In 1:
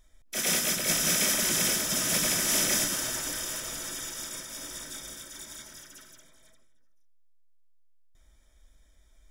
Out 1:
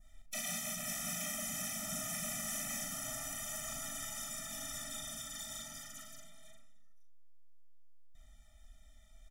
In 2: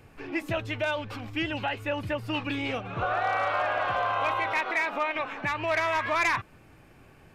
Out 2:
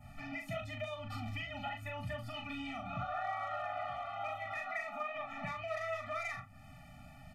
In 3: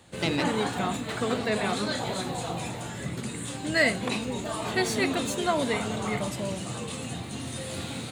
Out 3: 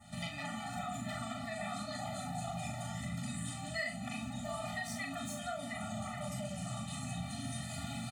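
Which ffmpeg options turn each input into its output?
-filter_complex "[0:a]bandreject=f=50:t=h:w=6,bandreject=f=100:t=h:w=6,bandreject=f=150:t=h:w=6,bandreject=f=200:t=h:w=6,bandreject=f=250:t=h:w=6,adynamicequalizer=threshold=0.00501:dfrequency=3900:dqfactor=1.4:tfrequency=3900:tqfactor=1.4:attack=5:release=100:ratio=0.375:range=3.5:mode=cutabove:tftype=bell,acrossover=split=910[a][b];[a]alimiter=level_in=3dB:limit=-24dB:level=0:latency=1,volume=-3dB[c];[c][b]amix=inputs=2:normalize=0,acompressor=threshold=-39dB:ratio=4,asplit=2[d][e];[e]aecho=0:1:40|69:0.596|0.168[f];[d][f]amix=inputs=2:normalize=0,afftfilt=real='re*eq(mod(floor(b*sr/1024/290),2),0)':imag='im*eq(mod(floor(b*sr/1024/290),2),0)':win_size=1024:overlap=0.75,volume=1.5dB"

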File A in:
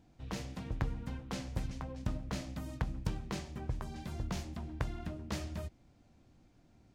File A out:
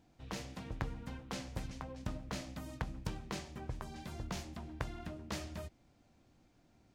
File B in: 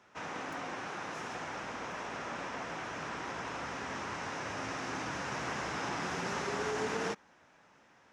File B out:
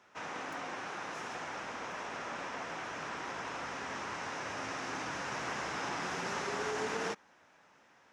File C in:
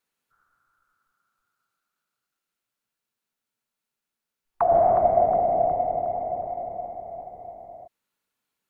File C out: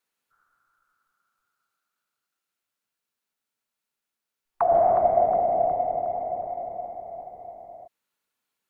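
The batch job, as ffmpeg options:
-af "lowshelf=f=260:g=-6"

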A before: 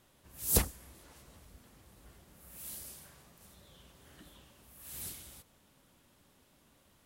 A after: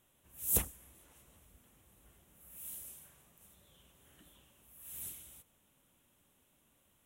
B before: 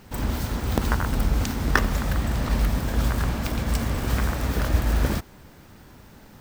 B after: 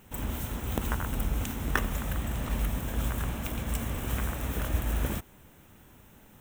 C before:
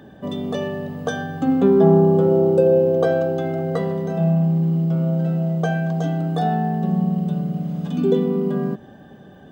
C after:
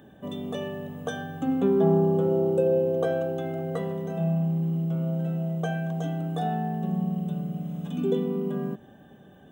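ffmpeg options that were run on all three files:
-af "aexciter=amount=1:drive=5:freq=2.5k,volume=-7.5dB"

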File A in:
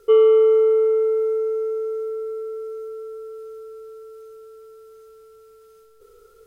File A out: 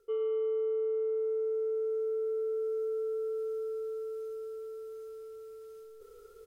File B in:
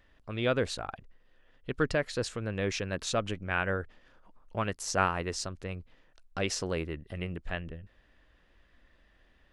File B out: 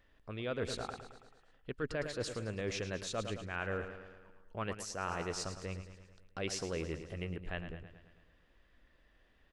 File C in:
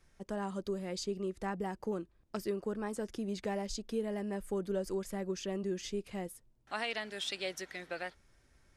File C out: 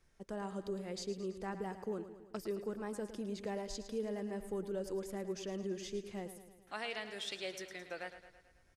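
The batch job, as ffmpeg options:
-af "aecho=1:1:109|218|327|436|545|654|763:0.266|0.154|0.0895|0.0519|0.0301|0.0175|0.0101,areverse,acompressor=threshold=-29dB:ratio=8,areverse,equalizer=f=440:t=o:w=0.43:g=2.5,volume=-4.5dB"

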